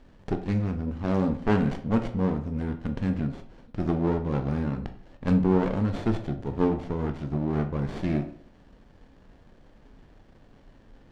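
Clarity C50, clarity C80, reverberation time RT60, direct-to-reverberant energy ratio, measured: 11.0 dB, 15.5 dB, 0.55 s, 6.5 dB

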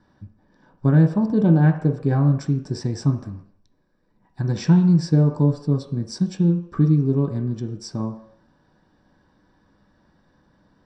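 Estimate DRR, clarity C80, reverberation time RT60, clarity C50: 2.5 dB, 11.5 dB, no single decay rate, 9.0 dB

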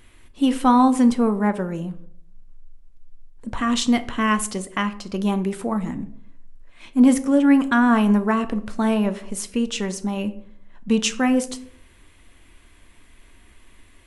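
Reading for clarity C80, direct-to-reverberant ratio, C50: 19.0 dB, 10.0 dB, 15.5 dB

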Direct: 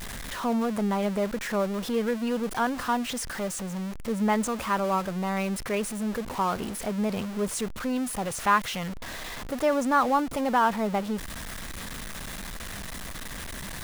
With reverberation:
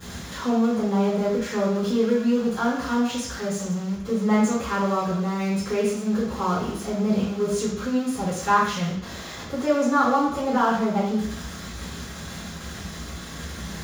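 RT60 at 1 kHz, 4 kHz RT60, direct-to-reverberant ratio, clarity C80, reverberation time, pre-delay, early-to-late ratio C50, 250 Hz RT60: 0.70 s, 0.70 s, -10.5 dB, 5.5 dB, 0.70 s, 3 ms, 2.5 dB, 0.80 s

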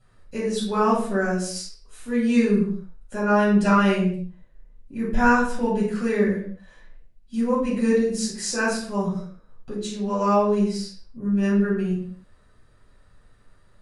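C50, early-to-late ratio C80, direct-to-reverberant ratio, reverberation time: 3.0 dB, 7.5 dB, -8.0 dB, no single decay rate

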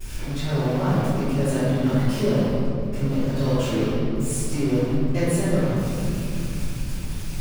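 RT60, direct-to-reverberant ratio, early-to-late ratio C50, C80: 2.6 s, -20.0 dB, -4.5 dB, -2.0 dB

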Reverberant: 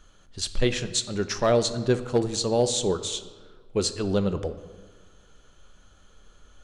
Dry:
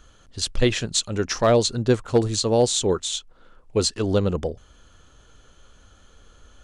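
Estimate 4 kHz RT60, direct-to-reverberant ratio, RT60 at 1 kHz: 0.95 s, 8.5 dB, 1.4 s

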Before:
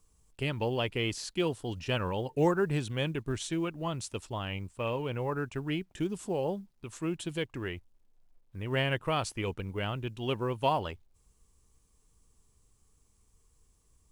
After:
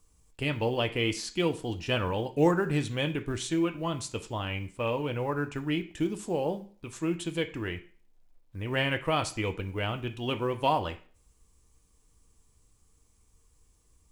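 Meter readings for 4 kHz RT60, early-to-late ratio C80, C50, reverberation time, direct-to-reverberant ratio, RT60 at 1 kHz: 0.40 s, 19.0 dB, 14.5 dB, 0.45 s, 6.0 dB, 0.45 s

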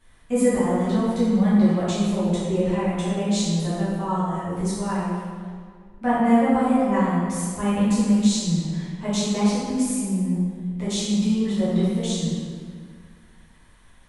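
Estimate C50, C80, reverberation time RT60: -3.0 dB, -0.5 dB, 2.0 s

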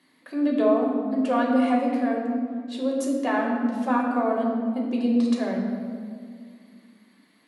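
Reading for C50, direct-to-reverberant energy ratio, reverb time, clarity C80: 2.0 dB, -3.0 dB, 2.1 s, 4.0 dB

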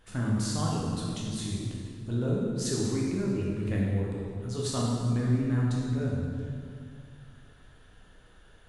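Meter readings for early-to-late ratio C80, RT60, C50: 0.5 dB, 2.3 s, -1.0 dB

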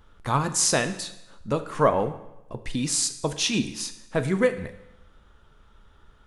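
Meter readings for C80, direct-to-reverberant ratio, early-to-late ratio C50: 14.5 dB, 9.0 dB, 12.5 dB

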